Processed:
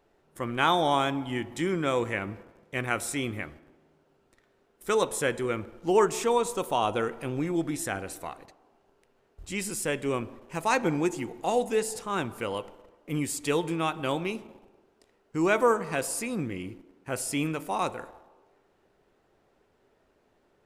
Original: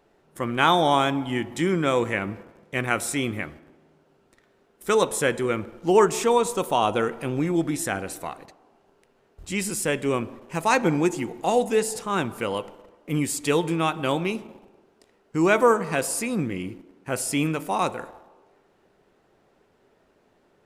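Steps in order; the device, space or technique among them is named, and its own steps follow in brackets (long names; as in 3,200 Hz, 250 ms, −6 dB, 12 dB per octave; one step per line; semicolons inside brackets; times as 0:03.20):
low shelf boost with a cut just above (low-shelf EQ 73 Hz +5.5 dB; parametric band 180 Hz −3 dB 0.77 octaves)
level −4.5 dB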